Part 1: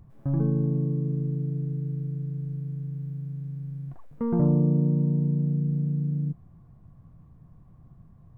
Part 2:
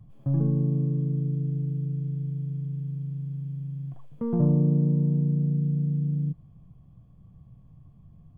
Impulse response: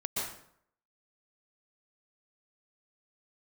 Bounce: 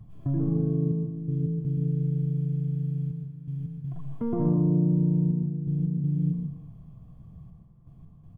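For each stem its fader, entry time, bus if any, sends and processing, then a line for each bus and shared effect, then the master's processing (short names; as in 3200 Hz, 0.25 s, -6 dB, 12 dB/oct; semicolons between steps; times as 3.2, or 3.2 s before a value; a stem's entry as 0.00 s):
-9.0 dB, 0.00 s, no send, LPF 1200 Hz 6 dB/oct; comb 5.9 ms, depth 92%
-1.5 dB, 0.00 s, send -3 dB, notch 550 Hz, Q 18; limiter -21.5 dBFS, peak gain reduction 9.5 dB; step gate "xxxxx..x.xxx" 82 bpm -12 dB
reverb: on, RT60 0.65 s, pre-delay 0.112 s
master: dry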